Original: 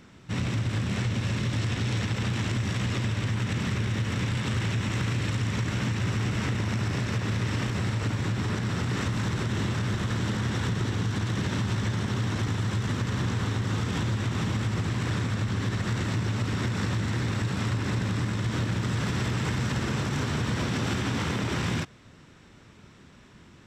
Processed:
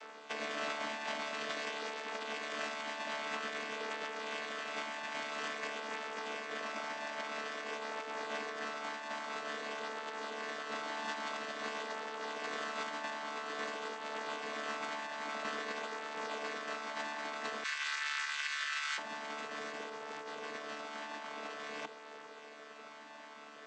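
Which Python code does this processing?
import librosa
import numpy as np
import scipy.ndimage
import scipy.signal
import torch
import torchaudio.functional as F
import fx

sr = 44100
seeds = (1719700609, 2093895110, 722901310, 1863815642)

y = fx.chord_vocoder(x, sr, chord='bare fifth', root=50)
y = fx.highpass(y, sr, hz=fx.steps((0.0, 540.0), (17.64, 1500.0), (18.98, 500.0)), slope=24)
y = fx.over_compress(y, sr, threshold_db=-49.0, ratio=-1.0)
y = y * librosa.db_to_amplitude(8.0)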